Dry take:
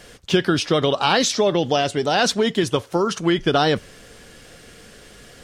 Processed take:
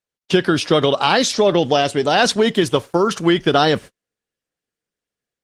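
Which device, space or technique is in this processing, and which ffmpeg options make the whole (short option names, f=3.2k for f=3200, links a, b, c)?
video call: -af "highpass=f=110:p=1,dynaudnorm=f=140:g=3:m=4.5dB,agate=range=-46dB:threshold=-30dB:ratio=16:detection=peak,volume=1dB" -ar 48000 -c:a libopus -b:a 24k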